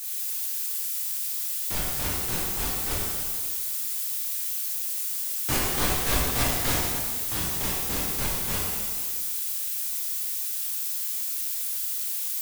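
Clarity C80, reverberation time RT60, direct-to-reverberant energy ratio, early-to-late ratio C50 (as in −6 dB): 0.5 dB, 1.8 s, −6.5 dB, −1.5 dB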